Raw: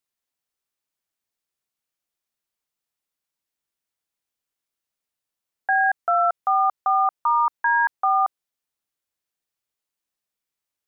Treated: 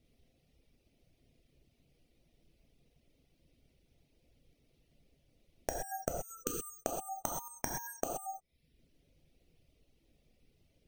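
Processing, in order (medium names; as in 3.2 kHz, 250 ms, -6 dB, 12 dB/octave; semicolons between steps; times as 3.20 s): inverted gate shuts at -19 dBFS, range -30 dB; saturation -21 dBFS, distortion -14 dB; tilt EQ -4.5 dB/octave; sample-and-hold 6×; high-order bell 1.2 kHz -15.5 dB 1.3 oct; spectral selection erased 6.09–6.78 s, 510–1200 Hz; gated-style reverb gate 150 ms flat, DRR -2.5 dB; reverb removal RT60 0.67 s; compression 6:1, threshold -49 dBFS, peak gain reduction 13 dB; trim +16 dB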